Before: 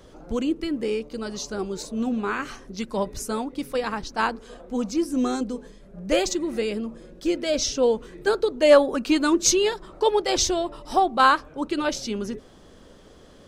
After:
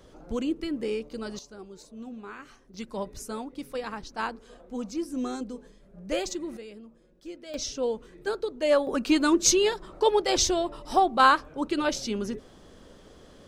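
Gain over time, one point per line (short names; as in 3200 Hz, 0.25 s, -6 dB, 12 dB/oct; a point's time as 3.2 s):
-4 dB
from 1.39 s -15 dB
from 2.74 s -7.5 dB
from 6.57 s -17 dB
from 7.54 s -8 dB
from 8.87 s -1.5 dB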